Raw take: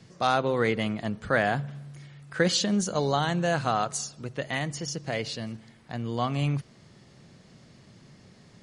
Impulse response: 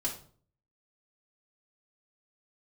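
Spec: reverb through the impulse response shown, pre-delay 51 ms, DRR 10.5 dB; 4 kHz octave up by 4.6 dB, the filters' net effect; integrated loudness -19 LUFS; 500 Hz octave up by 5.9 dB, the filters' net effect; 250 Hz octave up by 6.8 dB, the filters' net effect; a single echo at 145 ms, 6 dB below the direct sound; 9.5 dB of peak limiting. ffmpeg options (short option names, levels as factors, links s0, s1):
-filter_complex "[0:a]equalizer=f=250:t=o:g=8,equalizer=f=500:t=o:g=5,equalizer=f=4000:t=o:g=5.5,alimiter=limit=0.211:level=0:latency=1,aecho=1:1:145:0.501,asplit=2[s0][s1];[1:a]atrim=start_sample=2205,adelay=51[s2];[s1][s2]afir=irnorm=-1:irlink=0,volume=0.2[s3];[s0][s3]amix=inputs=2:normalize=0,volume=1.88"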